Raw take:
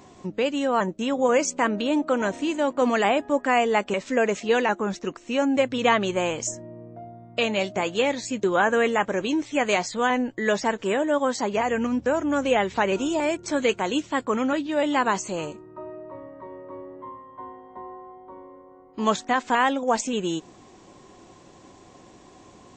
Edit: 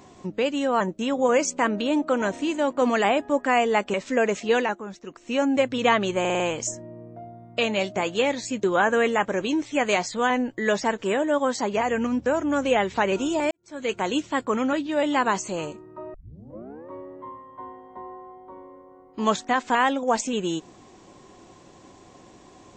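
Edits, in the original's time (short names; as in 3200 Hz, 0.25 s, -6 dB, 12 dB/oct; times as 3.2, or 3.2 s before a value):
4.58–5.32 dip -9.5 dB, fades 0.24 s
6.2 stutter 0.05 s, 5 plays
13.31–13.8 fade in quadratic
15.94 tape start 0.75 s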